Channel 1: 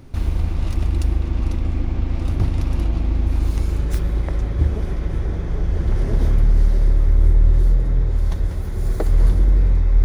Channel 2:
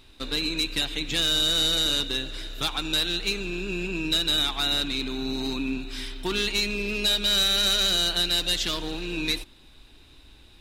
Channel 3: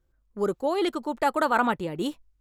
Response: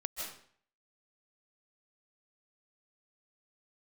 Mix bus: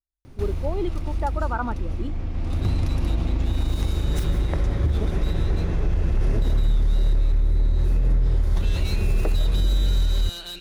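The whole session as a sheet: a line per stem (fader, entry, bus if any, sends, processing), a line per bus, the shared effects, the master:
-0.5 dB, 0.25 s, send -8.5 dB, compression, threshold -14 dBFS, peak gain reduction 6 dB; auto duck -18 dB, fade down 0.90 s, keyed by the third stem
8.45 s -15 dB -> 8.65 s -7 dB, 2.30 s, no send, saturation -23.5 dBFS, distortion -11 dB
-6.0 dB, 0.00 s, no send, spectral contrast expander 1.5:1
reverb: on, RT60 0.55 s, pre-delay 115 ms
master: peak limiter -13.5 dBFS, peak gain reduction 7 dB

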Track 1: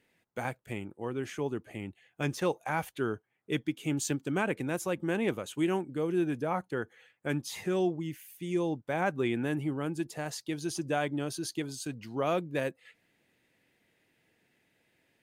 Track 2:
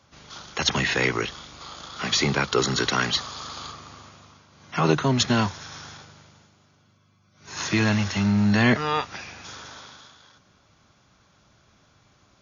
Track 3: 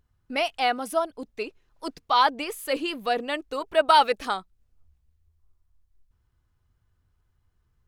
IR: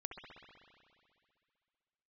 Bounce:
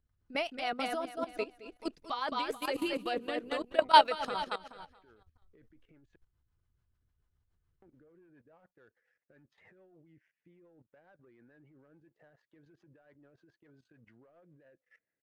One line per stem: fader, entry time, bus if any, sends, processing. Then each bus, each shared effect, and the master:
-11.0 dB, 2.05 s, muted 6.16–7.82 s, bus A, no send, no echo send, peaking EQ 560 Hz +8.5 dB 0.78 oct; peak limiter -22.5 dBFS, peak gain reduction 10 dB; resonant low-pass 1.7 kHz, resonance Q 3.1
mute
+0.5 dB, 0.00 s, no bus, no send, echo send -5.5 dB, none
bus A: 0.0 dB, waveshaping leveller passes 1; compression 6:1, threshold -48 dBFS, peak gain reduction 13 dB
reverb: none
echo: feedback delay 216 ms, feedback 36%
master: treble shelf 11 kHz -10.5 dB; level held to a coarse grid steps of 15 dB; rotary cabinet horn 7 Hz

